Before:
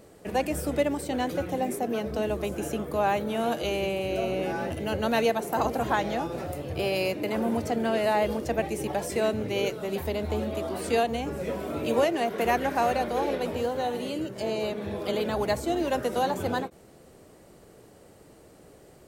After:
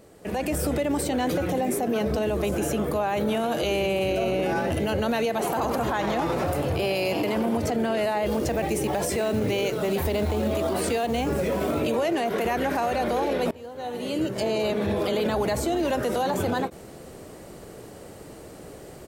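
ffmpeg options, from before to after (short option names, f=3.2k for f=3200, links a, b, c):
-filter_complex "[0:a]asplit=3[a][b][c];[a]afade=t=out:st=5.36:d=0.02[d];[b]asplit=8[e][f][g][h][i][j][k][l];[f]adelay=96,afreqshift=120,volume=-14dB[m];[g]adelay=192,afreqshift=240,volume=-17.9dB[n];[h]adelay=288,afreqshift=360,volume=-21.8dB[o];[i]adelay=384,afreqshift=480,volume=-25.6dB[p];[j]adelay=480,afreqshift=600,volume=-29.5dB[q];[k]adelay=576,afreqshift=720,volume=-33.4dB[r];[l]adelay=672,afreqshift=840,volume=-37.3dB[s];[e][m][n][o][p][q][r][s]amix=inputs=8:normalize=0,afade=t=in:st=5.36:d=0.02,afade=t=out:st=7.56:d=0.02[t];[c]afade=t=in:st=7.56:d=0.02[u];[d][t][u]amix=inputs=3:normalize=0,asettb=1/sr,asplit=3[v][w][x];[v]atrim=end=8.264[y];[w]atrim=start=8.26:end=11.8,asetpts=PTS-STARTPTS,afade=t=in:d=0.004:c=qsin,afade=t=out:st=3.536:d=0.004:c=qsin,acrusher=bits=6:mode=log:mix=0:aa=0.000001[z];[x]atrim=start=11.796[aa];[y][z]acrossfade=d=0.004:c1=hsin:c2=qsin[ab];[ab][aa]acrossfade=d=0.004:c1=qsin:c2=hsin,asplit=2[ac][ad];[ac]atrim=end=13.51,asetpts=PTS-STARTPTS,afade=t=out:st=13.506:d=0.004:c=hsin:silence=0.0630957[ae];[ad]atrim=start=13.51,asetpts=PTS-STARTPTS,afade=t=in:d=0.92:c=qua:silence=0.0630957[af];[ae][af]concat=n=2:v=0:a=1,acompressor=threshold=-27dB:ratio=3,alimiter=level_in=3.5dB:limit=-24dB:level=0:latency=1:release=27,volume=-3.5dB,dynaudnorm=f=210:g=3:m=10dB"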